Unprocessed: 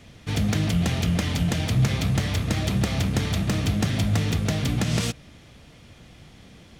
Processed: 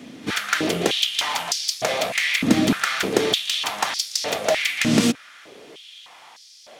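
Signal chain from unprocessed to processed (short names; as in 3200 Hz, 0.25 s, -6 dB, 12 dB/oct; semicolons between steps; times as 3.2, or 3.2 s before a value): pre-echo 42 ms -18 dB; stepped high-pass 3.3 Hz 260–5000 Hz; gain +5.5 dB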